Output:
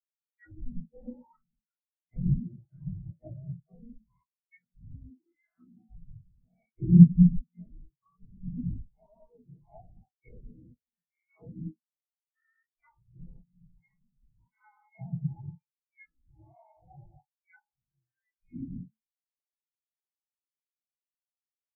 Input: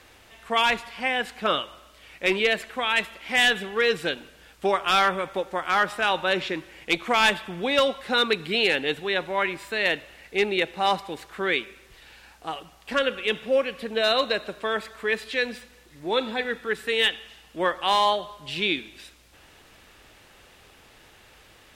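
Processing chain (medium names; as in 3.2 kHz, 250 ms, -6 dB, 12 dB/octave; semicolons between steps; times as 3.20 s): every event in the spectrogram widened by 240 ms; frequency inversion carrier 2.6 kHz; bass shelf 170 Hz +5 dB; low-pass that closes with the level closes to 330 Hz, closed at -13.5 dBFS; in parallel at -2.5 dB: compression, threshold -35 dBFS, peak gain reduction 19 dB; on the sum: distance through air 52 m; on a send at -5.5 dB: reverberation, pre-delay 3 ms; on the sum: spectral contrast expander 4:1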